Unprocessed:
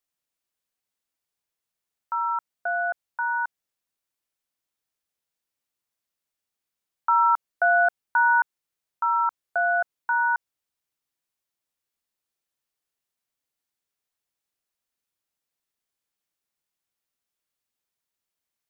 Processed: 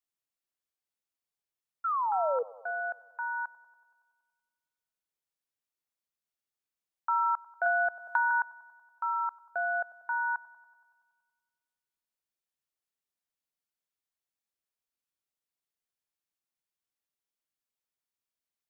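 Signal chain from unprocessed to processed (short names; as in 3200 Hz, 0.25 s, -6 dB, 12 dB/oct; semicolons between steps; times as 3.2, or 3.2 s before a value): 1.84–2.43 painted sound fall 460–1400 Hz -21 dBFS; on a send: band-limited delay 94 ms, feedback 68%, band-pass 750 Hz, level -20 dB; 7.66–8.31 on the sum: three-band squash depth 100%; gain -8 dB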